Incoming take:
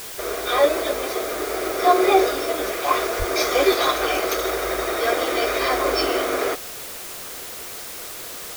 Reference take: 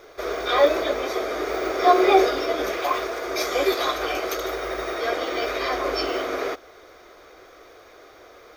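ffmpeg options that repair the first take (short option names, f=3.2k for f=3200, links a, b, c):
-filter_complex "[0:a]asplit=3[a][b][c];[a]afade=t=out:st=3.18:d=0.02[d];[b]highpass=f=140:w=0.5412,highpass=f=140:w=1.3066,afade=t=in:st=3.18:d=0.02,afade=t=out:st=3.3:d=0.02[e];[c]afade=t=in:st=3.3:d=0.02[f];[d][e][f]amix=inputs=3:normalize=0,afwtdn=0.018,asetnsamples=n=441:p=0,asendcmd='2.88 volume volume -4dB',volume=0dB"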